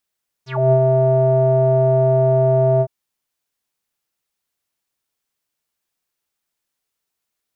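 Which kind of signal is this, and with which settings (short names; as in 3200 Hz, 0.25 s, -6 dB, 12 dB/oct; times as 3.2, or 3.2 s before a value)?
synth note square C3 12 dB/oct, low-pass 620 Hz, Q 9.7, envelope 3.5 oct, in 0.12 s, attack 0.258 s, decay 0.07 s, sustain -2.5 dB, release 0.06 s, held 2.35 s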